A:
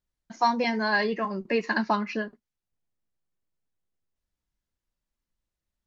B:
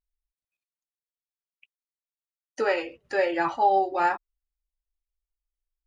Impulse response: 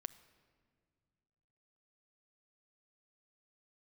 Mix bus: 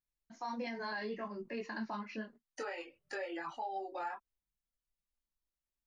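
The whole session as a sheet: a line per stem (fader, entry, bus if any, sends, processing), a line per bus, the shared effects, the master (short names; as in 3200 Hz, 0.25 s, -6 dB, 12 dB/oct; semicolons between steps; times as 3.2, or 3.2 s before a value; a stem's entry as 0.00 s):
-9.0 dB, 0.00 s, no send, dry
-1.5 dB, 0.00 s, no send, reverb removal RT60 0.58 s; low shelf 250 Hz -11.5 dB; compressor 12:1, threshold -30 dBFS, peak gain reduction 13 dB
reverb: off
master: chorus voices 6, 0.52 Hz, delay 22 ms, depth 4.2 ms; limiter -31.5 dBFS, peak gain reduction 10.5 dB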